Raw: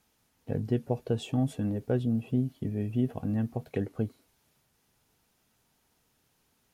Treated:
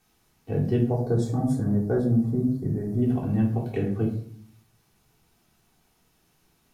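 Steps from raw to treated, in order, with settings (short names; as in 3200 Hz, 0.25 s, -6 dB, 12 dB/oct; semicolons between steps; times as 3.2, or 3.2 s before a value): 0.9–3.02 Butterworth band-stop 2800 Hz, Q 1.1; shoebox room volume 530 m³, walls furnished, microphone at 3.5 m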